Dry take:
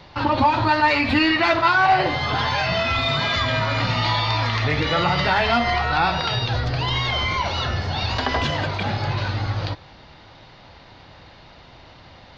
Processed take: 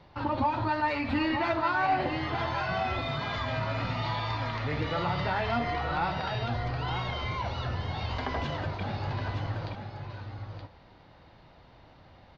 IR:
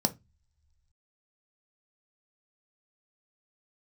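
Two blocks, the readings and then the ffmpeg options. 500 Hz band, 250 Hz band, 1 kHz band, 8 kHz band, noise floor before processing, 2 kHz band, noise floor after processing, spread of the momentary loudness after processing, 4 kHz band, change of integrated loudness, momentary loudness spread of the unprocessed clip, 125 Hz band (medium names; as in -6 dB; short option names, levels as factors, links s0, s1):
-8.5 dB, -8.0 dB, -9.5 dB, no reading, -47 dBFS, -12.0 dB, -56 dBFS, 10 LU, -15.0 dB, -10.5 dB, 7 LU, -8.0 dB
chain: -af "highshelf=f=2100:g=-10,aecho=1:1:923:0.447,volume=0.376"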